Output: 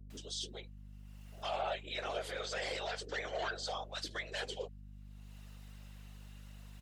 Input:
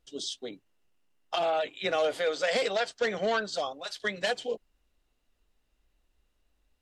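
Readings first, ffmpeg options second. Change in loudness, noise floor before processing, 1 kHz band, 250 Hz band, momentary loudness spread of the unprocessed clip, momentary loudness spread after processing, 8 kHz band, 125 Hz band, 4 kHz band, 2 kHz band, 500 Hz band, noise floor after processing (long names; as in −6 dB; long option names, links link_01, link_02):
−9.5 dB, −75 dBFS, −8.0 dB, −11.5 dB, 9 LU, 17 LU, −4.5 dB, +1.5 dB, −6.5 dB, −8.5 dB, −12.0 dB, −51 dBFS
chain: -filter_complex "[0:a]highpass=frequency=260:width=0.5412,highpass=frequency=260:width=1.3066,lowshelf=frequency=370:gain=-10.5,alimiter=level_in=3dB:limit=-24dB:level=0:latency=1:release=17,volume=-3dB,afftfilt=real='hypot(re,im)*cos(2*PI*random(0))':imag='hypot(re,im)*sin(2*PI*random(1))':win_size=512:overlap=0.75,acompressor=mode=upward:threshold=-48dB:ratio=2.5,aeval=exprs='val(0)+0.00224*(sin(2*PI*50*n/s)+sin(2*PI*2*50*n/s)/2+sin(2*PI*3*50*n/s)/3+sin(2*PI*4*50*n/s)/4+sin(2*PI*5*50*n/s)/5)':channel_layout=same,acrossover=split=370[link_01][link_02];[link_02]adelay=110[link_03];[link_01][link_03]amix=inputs=2:normalize=0,volume=3dB"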